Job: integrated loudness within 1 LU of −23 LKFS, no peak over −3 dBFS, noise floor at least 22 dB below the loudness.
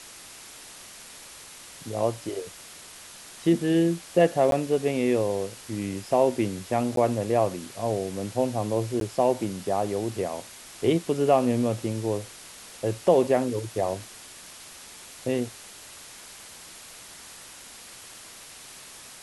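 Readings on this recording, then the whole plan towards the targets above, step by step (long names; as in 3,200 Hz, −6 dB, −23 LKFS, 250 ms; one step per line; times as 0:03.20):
number of dropouts 3; longest dropout 12 ms; background noise floor −46 dBFS; target noise floor −48 dBFS; integrated loudness −26.0 LKFS; sample peak −7.5 dBFS; target loudness −23.0 LKFS
→ repair the gap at 0:04.51/0:06.96/0:09.00, 12 ms
broadband denoise 6 dB, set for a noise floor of −46 dBFS
level +3 dB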